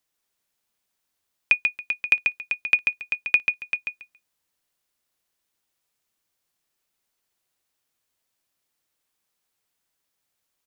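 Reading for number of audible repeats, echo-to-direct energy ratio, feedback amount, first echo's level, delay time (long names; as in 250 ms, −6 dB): 3, −4.5 dB, 19%, −4.5 dB, 139 ms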